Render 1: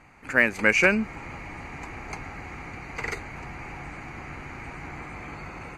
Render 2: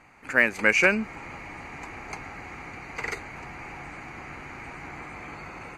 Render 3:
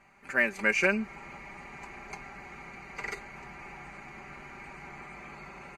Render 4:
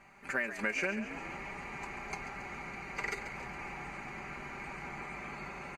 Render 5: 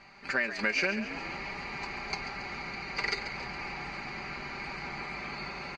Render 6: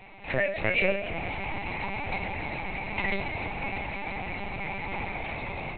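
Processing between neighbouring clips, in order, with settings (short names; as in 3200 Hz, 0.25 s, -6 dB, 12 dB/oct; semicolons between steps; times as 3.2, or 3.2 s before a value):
low shelf 180 Hz -7 dB
comb 5.1 ms; gain -7 dB
compressor 4:1, threshold -34 dBFS, peak gain reduction 12 dB; on a send: frequency-shifting echo 0.138 s, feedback 63%, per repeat +54 Hz, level -12 dB; on the sum: gain +2 dB
synth low-pass 4600 Hz, resonance Q 5.4; gain +3 dB
fixed phaser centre 590 Hz, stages 4; reverb RT60 0.30 s, pre-delay 5 ms, DRR 2.5 dB; LPC vocoder at 8 kHz pitch kept; gain +8 dB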